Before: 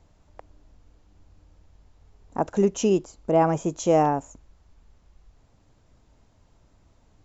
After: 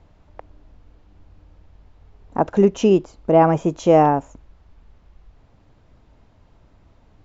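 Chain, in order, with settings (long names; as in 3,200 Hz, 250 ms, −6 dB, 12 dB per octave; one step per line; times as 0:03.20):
low-pass filter 3,700 Hz 12 dB per octave
level +6 dB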